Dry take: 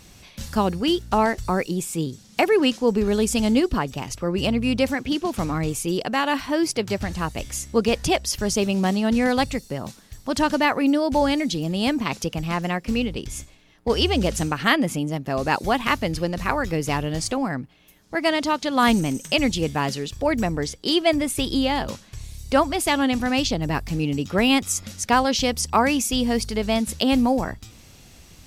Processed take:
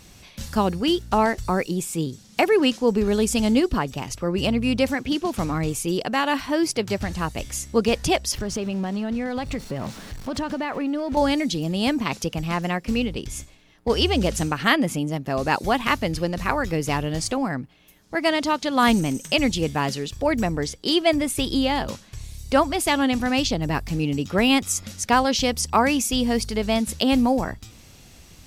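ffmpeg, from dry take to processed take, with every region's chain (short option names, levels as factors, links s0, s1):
-filter_complex "[0:a]asettb=1/sr,asplit=3[s0][s1][s2];[s0]atrim=end=8.324[s3];[s1]atrim=start=8.32:end=11.17,asetpts=PTS-STARTPTS,afade=t=in:d=0.004:c=qsin,afade=t=out:st=2.846:d=0.004:c=qsin,aeval=exprs='val(0)+0.5*0.0251*sgn(val(0))':c=same,lowpass=f=3000:p=1,acompressor=threshold=0.0708:ratio=5:attack=3.2:release=140:knee=1:detection=peak[s4];[s2]atrim=start=11.166[s5];[s3][s4]acrossfade=d=0.004:c1=hsin:c2=qsin[s6];[s6][s5]acrossfade=d=0.004:c1=qsin:c2=hsin"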